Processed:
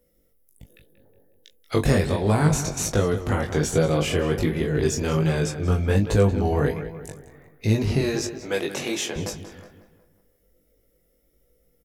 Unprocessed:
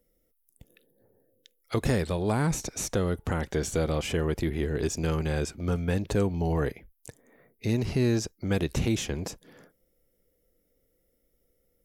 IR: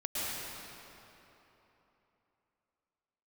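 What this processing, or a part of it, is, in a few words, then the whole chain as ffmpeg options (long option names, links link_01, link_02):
double-tracked vocal: -filter_complex "[0:a]asettb=1/sr,asplit=3[link_01][link_02][link_03];[link_01]atrim=end=8.014[link_04];[link_02]atrim=start=8.01:end=9.16,asetpts=PTS-STARTPTS,afade=type=in:duration=0.004:curve=qsin,afade=type=out:start_time=1.146:duration=0.004:curve=qsin,highpass=410[link_05];[link_03]atrim=start=9.156[link_06];[link_04][link_05]acrossfade=duration=0.004:curve1=hsin:curve2=qsin[link_07];[link_07][link_06]acrossfade=duration=0.004:curve1=qsin:curve2=hsin,asplit=2[link_08][link_09];[link_09]adelay=20,volume=-8dB[link_10];[link_08][link_10]amix=inputs=2:normalize=0,asplit=2[link_11][link_12];[link_12]adelay=183,lowpass=frequency=3300:poles=1,volume=-11dB,asplit=2[link_13][link_14];[link_14]adelay=183,lowpass=frequency=3300:poles=1,volume=0.48,asplit=2[link_15][link_16];[link_16]adelay=183,lowpass=frequency=3300:poles=1,volume=0.48,asplit=2[link_17][link_18];[link_18]adelay=183,lowpass=frequency=3300:poles=1,volume=0.48,asplit=2[link_19][link_20];[link_20]adelay=183,lowpass=frequency=3300:poles=1,volume=0.48[link_21];[link_11][link_13][link_15][link_17][link_19][link_21]amix=inputs=6:normalize=0,flanger=delay=18:depth=3.8:speed=1.3,volume=8dB"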